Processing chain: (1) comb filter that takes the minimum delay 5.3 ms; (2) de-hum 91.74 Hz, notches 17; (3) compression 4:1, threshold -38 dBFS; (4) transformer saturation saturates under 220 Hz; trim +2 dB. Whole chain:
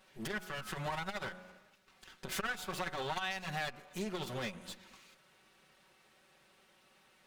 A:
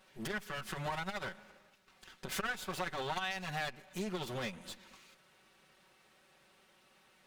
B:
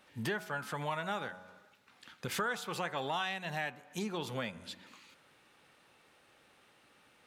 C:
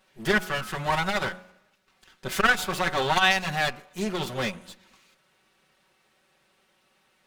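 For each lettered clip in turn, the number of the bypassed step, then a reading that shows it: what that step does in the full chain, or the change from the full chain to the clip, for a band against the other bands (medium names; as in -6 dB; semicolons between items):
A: 2, momentary loudness spread change -2 LU; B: 1, 8 kHz band -2.0 dB; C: 3, mean gain reduction 10.0 dB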